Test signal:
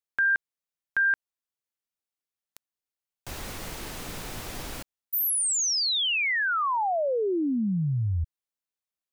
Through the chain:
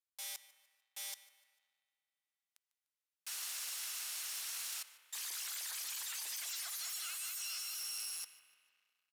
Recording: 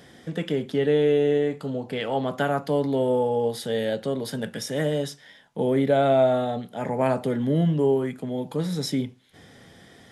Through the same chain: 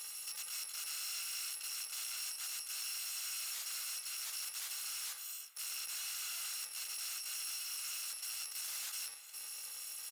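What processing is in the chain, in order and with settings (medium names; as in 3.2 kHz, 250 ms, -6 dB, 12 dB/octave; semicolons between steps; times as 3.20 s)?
bit-reversed sample order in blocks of 128 samples; reverse; compression 12:1, threshold -29 dBFS; reverse; integer overflow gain 33.5 dB; peak limiter -43 dBFS; spring tank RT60 3.4 s, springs 33 ms, chirp 75 ms, DRR 14.5 dB; resampled via 32 kHz; waveshaping leveller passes 2; high-pass 1.2 kHz 12 dB/octave; on a send: feedback delay 149 ms, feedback 42%, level -19 dB; on the sum: dynamic bell 6 kHz, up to +4 dB, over -57 dBFS, Q 0.72; trim +1 dB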